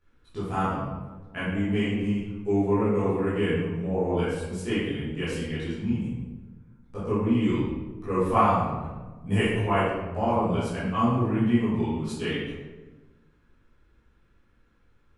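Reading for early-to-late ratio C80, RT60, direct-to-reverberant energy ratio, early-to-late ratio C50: 2.0 dB, 1.3 s, -12.0 dB, -1.5 dB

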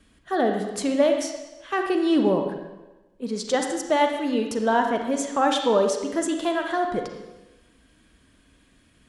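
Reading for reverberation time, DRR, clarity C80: 1.1 s, 3.5 dB, 7.0 dB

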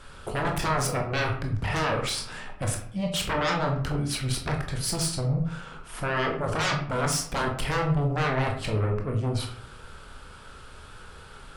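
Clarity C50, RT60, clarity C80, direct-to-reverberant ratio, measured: 7.0 dB, 0.65 s, 11.0 dB, 1.5 dB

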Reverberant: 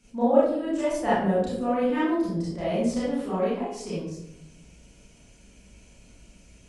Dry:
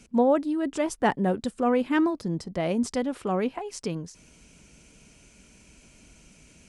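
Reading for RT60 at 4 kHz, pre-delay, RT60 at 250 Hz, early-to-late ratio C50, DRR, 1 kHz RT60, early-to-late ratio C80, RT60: 0.50 s, 28 ms, 1.0 s, -1.5 dB, -10.5 dB, 0.65 s, 3.5 dB, 0.80 s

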